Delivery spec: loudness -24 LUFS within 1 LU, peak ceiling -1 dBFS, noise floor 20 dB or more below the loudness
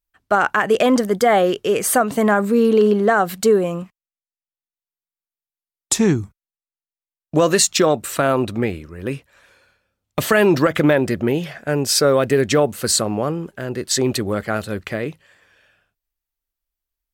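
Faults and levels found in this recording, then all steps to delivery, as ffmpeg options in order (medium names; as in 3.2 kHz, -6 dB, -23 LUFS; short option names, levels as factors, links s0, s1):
loudness -18.0 LUFS; peak level -3.0 dBFS; loudness target -24.0 LUFS
-> -af "volume=0.501"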